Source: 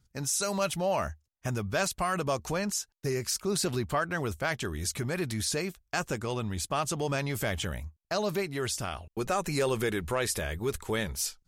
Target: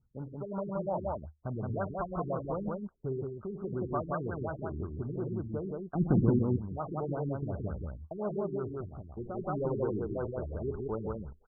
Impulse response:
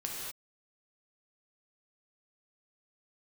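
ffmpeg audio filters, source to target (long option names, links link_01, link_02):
-filter_complex "[0:a]asettb=1/sr,asplit=3[link_01][link_02][link_03];[link_01]atrim=end=5.954[link_04];[link_02]atrim=start=5.95:end=6.39,asetpts=PTS-STARTPTS,afade=type=in:duration=0.004:curve=qsin,afade=type=out:start_time=0.436:duration=0.004:curve=qsin,lowshelf=frequency=410:width_type=q:width=1.5:gain=13[link_05];[link_03]atrim=start=6.386[link_06];[link_04][link_05]acrossfade=duration=0.004:curve1=hsin:curve2=qsin[link_07];[link_07][link_06]acrossfade=duration=0.004:curve1=qsin:curve2=hsin,aecho=1:1:52.48|110.8|172:0.282|0.282|0.794,asettb=1/sr,asplit=3[link_08][link_09][link_10];[link_08]atrim=end=3.234[link_11];[link_09]atrim=start=3.23:end=3.73,asetpts=PTS-STARTPTS,afade=type=in:duration=0.004:curve=qsin,afade=type=out:start_time=0.496:duration=0.004:curve=qsin,acompressor=threshold=-30dB:ratio=2.5[link_12];[link_10]atrim=start=3.726[link_13];[link_11][link_12]acrossfade=duration=0.004:curve1=hsin:curve2=qsin[link_14];[link_14][link_13]acrossfade=duration=0.004:curve1=qsin:curve2=hsin,asplit=3[link_15][link_16][link_17];[link_15]afade=type=out:start_time=8.8:duration=0.02[link_18];[link_16]equalizer=frequency=1800:width=0.36:gain=-13,afade=type=in:start_time=8.8:duration=0.02,afade=type=out:start_time=9.37:duration=0.02[link_19];[link_17]afade=type=in:start_time=9.37:duration=0.02[link_20];[link_18][link_19][link_20]amix=inputs=3:normalize=0,afftfilt=real='re*lt(b*sr/1024,400*pow(1600/400,0.5+0.5*sin(2*PI*5.6*pts/sr)))':imag='im*lt(b*sr/1024,400*pow(1600/400,0.5+0.5*sin(2*PI*5.6*pts/sr)))':win_size=1024:overlap=0.75,volume=-4.5dB"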